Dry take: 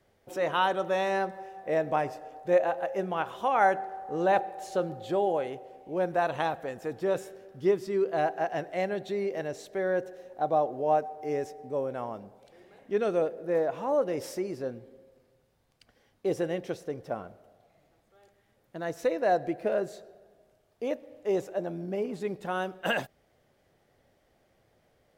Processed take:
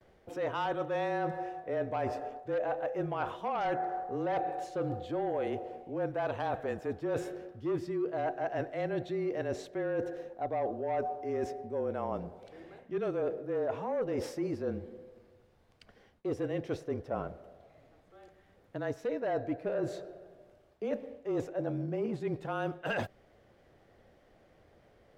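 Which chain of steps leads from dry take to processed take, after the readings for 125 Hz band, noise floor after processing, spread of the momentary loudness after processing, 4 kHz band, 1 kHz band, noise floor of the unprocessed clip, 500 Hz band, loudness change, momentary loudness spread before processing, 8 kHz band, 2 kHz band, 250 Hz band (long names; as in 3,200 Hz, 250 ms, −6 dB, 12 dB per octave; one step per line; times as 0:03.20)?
+1.0 dB, −64 dBFS, 7 LU, −8.0 dB, −6.0 dB, −69 dBFS, −5.0 dB, −5.0 dB, 11 LU, can't be measured, −6.5 dB, −1.5 dB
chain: harmonic generator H 5 −15 dB, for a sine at −11.5 dBFS
low-pass filter 2,700 Hz 6 dB per octave
reversed playback
downward compressor 6 to 1, threshold −31 dBFS, peak gain reduction 12 dB
reversed playback
frequency shifter −27 Hz
noise gate with hold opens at −58 dBFS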